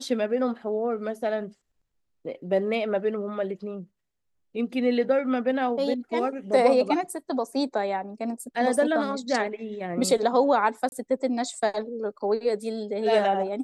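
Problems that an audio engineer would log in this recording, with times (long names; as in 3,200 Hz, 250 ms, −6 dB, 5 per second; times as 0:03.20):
0:10.89–0:10.92: drop-out 31 ms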